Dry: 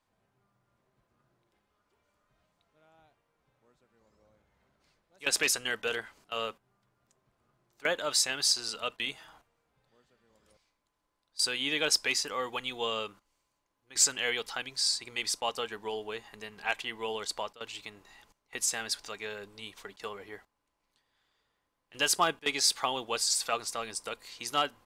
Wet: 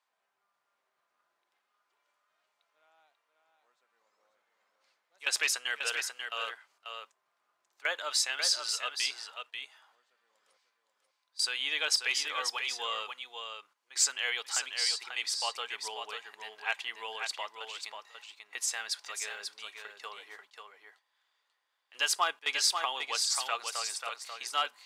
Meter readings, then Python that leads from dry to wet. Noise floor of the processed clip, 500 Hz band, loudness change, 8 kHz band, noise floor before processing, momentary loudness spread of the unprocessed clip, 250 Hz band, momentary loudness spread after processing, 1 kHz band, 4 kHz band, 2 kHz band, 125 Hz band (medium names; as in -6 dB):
-81 dBFS, -8.5 dB, -1.5 dB, -2.0 dB, -81 dBFS, 16 LU, under -15 dB, 17 LU, -1.0 dB, 0.0 dB, +0.5 dB, under -25 dB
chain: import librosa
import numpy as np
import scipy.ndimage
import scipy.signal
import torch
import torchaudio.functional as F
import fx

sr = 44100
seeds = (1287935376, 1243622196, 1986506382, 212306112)

y = scipy.signal.sosfilt(scipy.signal.butter(2, 870.0, 'highpass', fs=sr, output='sos'), x)
y = fx.high_shelf(y, sr, hz=8900.0, db=-7.5)
y = y + 10.0 ** (-6.0 / 20.0) * np.pad(y, (int(539 * sr / 1000.0), 0))[:len(y)]